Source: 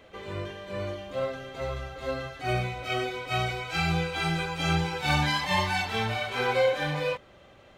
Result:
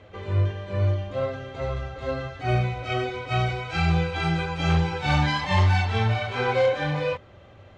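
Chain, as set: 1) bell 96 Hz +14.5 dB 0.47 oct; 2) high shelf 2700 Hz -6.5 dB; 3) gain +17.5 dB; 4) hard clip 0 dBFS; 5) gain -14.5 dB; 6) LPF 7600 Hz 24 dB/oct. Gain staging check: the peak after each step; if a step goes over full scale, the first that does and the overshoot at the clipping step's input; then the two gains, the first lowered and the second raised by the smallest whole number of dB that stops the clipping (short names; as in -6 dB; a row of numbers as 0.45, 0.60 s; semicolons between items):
-11.0, -12.0, +5.5, 0.0, -14.5, -14.0 dBFS; step 3, 5.5 dB; step 3 +11.5 dB, step 5 -8.5 dB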